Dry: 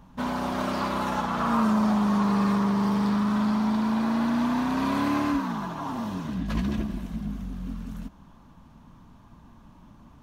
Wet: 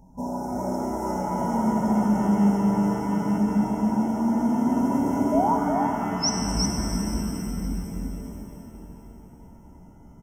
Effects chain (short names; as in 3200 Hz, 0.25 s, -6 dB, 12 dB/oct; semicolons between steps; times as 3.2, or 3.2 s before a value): painted sound rise, 5.32–6.3, 590–6100 Hz -22 dBFS; echo 0.361 s -3.5 dB; FFT band-reject 1000–5200 Hz; shimmer reverb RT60 3.6 s, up +7 st, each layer -8 dB, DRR 2.5 dB; gain -1 dB